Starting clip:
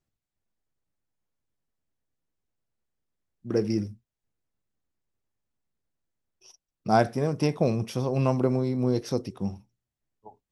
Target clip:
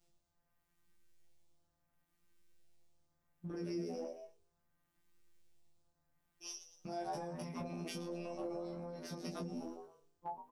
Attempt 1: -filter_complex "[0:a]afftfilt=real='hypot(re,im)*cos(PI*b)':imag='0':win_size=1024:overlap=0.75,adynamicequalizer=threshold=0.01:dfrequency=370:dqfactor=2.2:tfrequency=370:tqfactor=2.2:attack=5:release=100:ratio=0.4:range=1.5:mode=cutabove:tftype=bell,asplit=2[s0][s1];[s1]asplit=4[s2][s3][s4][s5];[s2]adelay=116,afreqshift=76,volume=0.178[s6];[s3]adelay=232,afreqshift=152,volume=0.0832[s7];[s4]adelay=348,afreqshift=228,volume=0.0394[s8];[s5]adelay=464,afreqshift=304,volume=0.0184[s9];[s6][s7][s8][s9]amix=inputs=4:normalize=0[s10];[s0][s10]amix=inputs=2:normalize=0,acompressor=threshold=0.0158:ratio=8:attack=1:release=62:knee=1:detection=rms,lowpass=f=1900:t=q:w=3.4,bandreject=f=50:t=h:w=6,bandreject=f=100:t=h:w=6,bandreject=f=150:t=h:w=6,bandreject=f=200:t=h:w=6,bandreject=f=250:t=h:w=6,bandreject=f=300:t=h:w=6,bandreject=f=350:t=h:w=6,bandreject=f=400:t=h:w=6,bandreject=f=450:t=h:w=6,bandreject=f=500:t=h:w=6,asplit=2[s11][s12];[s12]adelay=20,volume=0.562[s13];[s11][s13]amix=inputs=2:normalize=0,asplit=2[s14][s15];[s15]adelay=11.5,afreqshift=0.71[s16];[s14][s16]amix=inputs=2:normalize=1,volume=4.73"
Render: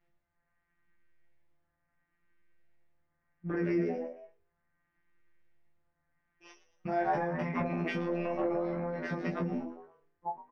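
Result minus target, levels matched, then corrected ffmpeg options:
compression: peak gain reduction -10 dB; 2 kHz band +6.0 dB
-filter_complex "[0:a]afftfilt=real='hypot(re,im)*cos(PI*b)':imag='0':win_size=1024:overlap=0.75,adynamicequalizer=threshold=0.01:dfrequency=370:dqfactor=2.2:tfrequency=370:tqfactor=2.2:attack=5:release=100:ratio=0.4:range=1.5:mode=cutabove:tftype=bell,asplit=2[s0][s1];[s1]asplit=4[s2][s3][s4][s5];[s2]adelay=116,afreqshift=76,volume=0.178[s6];[s3]adelay=232,afreqshift=152,volume=0.0832[s7];[s4]adelay=348,afreqshift=228,volume=0.0394[s8];[s5]adelay=464,afreqshift=304,volume=0.0184[s9];[s6][s7][s8][s9]amix=inputs=4:normalize=0[s10];[s0][s10]amix=inputs=2:normalize=0,acompressor=threshold=0.00422:ratio=8:attack=1:release=62:knee=1:detection=rms,bandreject=f=50:t=h:w=6,bandreject=f=100:t=h:w=6,bandreject=f=150:t=h:w=6,bandreject=f=200:t=h:w=6,bandreject=f=250:t=h:w=6,bandreject=f=300:t=h:w=6,bandreject=f=350:t=h:w=6,bandreject=f=400:t=h:w=6,bandreject=f=450:t=h:w=6,bandreject=f=500:t=h:w=6,asplit=2[s11][s12];[s12]adelay=20,volume=0.562[s13];[s11][s13]amix=inputs=2:normalize=0,asplit=2[s14][s15];[s15]adelay=11.5,afreqshift=0.71[s16];[s14][s16]amix=inputs=2:normalize=1,volume=4.73"

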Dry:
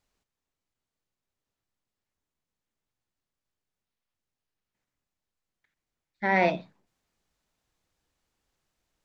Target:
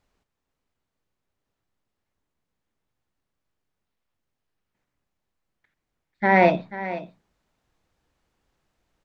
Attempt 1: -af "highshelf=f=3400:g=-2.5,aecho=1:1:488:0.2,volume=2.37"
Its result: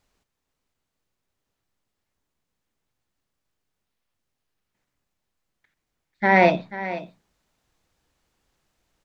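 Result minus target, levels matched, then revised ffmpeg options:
4 kHz band +3.0 dB
-af "highshelf=f=3400:g=-10,aecho=1:1:488:0.2,volume=2.37"

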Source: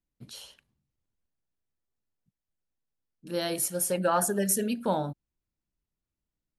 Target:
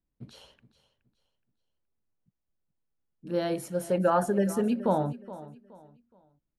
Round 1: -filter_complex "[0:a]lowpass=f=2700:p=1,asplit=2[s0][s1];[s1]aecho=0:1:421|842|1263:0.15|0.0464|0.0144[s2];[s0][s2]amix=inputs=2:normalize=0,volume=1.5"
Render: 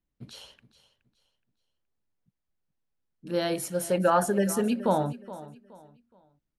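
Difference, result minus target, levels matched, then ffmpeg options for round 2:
2 kHz band +3.0 dB
-filter_complex "[0:a]lowpass=f=1000:p=1,asplit=2[s0][s1];[s1]aecho=0:1:421|842|1263:0.15|0.0464|0.0144[s2];[s0][s2]amix=inputs=2:normalize=0,volume=1.5"

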